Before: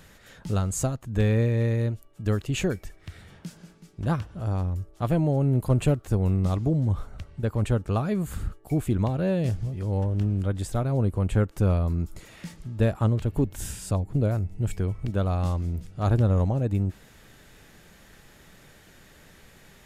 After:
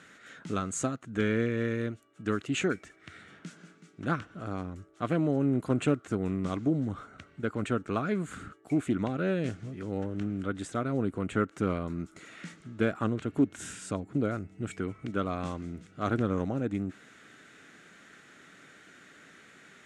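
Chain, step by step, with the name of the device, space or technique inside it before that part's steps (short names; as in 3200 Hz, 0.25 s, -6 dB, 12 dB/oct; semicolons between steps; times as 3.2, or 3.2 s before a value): full-range speaker at full volume (Doppler distortion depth 0.23 ms; speaker cabinet 210–8600 Hz, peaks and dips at 280 Hz +5 dB, 550 Hz -4 dB, 890 Hz -7 dB, 1400 Hz +9 dB, 2100 Hz +4 dB, 4900 Hz -6 dB); gain -1.5 dB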